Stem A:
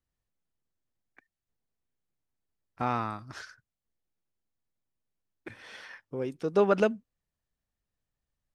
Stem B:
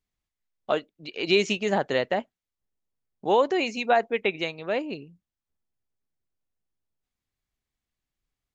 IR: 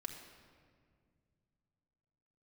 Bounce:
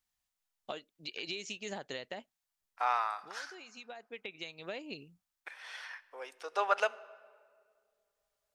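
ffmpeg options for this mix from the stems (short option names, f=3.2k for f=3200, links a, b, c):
-filter_complex "[0:a]highpass=f=710:w=0.5412,highpass=f=710:w=1.3066,volume=-0.5dB,asplit=3[a][b][c];[b]volume=-8.5dB[d];[1:a]tiltshelf=f=1.1k:g=-7,acompressor=threshold=-31dB:ratio=12,equalizer=f=1.5k:w=0.5:g=-7,volume=-2dB[e];[c]apad=whole_len=376970[f];[e][f]sidechaincompress=threshold=-46dB:ratio=8:attack=29:release=1130[g];[2:a]atrim=start_sample=2205[h];[d][h]afir=irnorm=-1:irlink=0[i];[a][g][i]amix=inputs=3:normalize=0"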